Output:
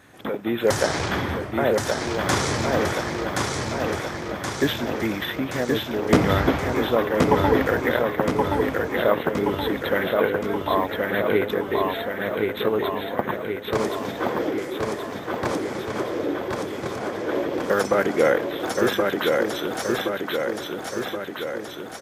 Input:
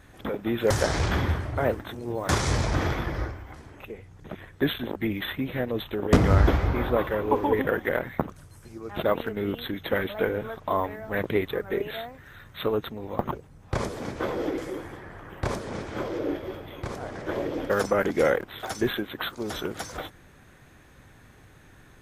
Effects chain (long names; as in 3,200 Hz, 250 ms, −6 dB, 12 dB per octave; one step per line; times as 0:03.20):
Bessel high-pass filter 170 Hz, order 2
on a send: repeating echo 1,074 ms, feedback 60%, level −3 dB
on the sum: level +3.5 dB